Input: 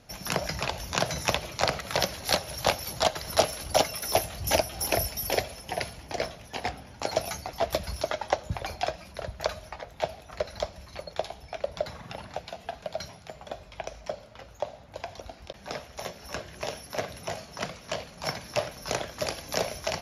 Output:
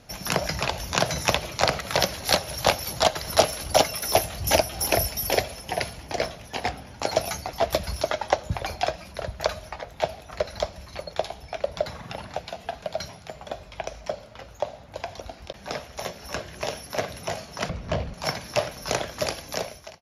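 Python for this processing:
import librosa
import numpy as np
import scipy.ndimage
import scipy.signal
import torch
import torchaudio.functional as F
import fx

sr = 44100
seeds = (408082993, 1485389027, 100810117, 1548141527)

y = fx.fade_out_tail(x, sr, length_s=0.79)
y = fx.riaa(y, sr, side='playback', at=(17.69, 18.14))
y = y * librosa.db_to_amplitude(4.0)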